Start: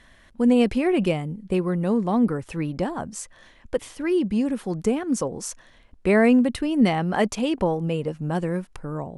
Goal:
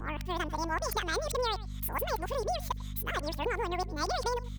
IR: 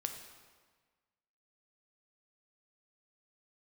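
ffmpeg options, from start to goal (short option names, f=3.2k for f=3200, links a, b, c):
-filter_complex "[0:a]areverse,lowshelf=f=420:g=-12,asplit=2[a][b];[b]aecho=0:1:191:0.0708[c];[a][c]amix=inputs=2:normalize=0,asetrate=88200,aresample=44100,aeval=exprs='val(0)+0.0141*(sin(2*PI*50*n/s)+sin(2*PI*2*50*n/s)/2+sin(2*PI*3*50*n/s)/3+sin(2*PI*4*50*n/s)/4+sin(2*PI*5*50*n/s)/5)':c=same,acrossover=split=110[d][e];[e]acompressor=threshold=-29dB:ratio=6[f];[d][f]amix=inputs=2:normalize=0"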